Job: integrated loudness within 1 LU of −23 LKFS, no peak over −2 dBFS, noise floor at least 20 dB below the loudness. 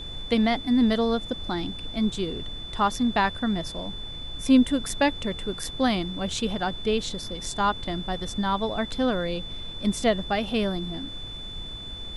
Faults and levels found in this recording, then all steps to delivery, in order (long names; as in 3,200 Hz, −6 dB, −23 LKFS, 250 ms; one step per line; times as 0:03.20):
interfering tone 3,500 Hz; level of the tone −37 dBFS; background noise floor −38 dBFS; target noise floor −47 dBFS; integrated loudness −26.5 LKFS; sample peak −7.5 dBFS; target loudness −23.0 LKFS
→ notch filter 3,500 Hz, Q 30
noise reduction from a noise print 9 dB
level +3.5 dB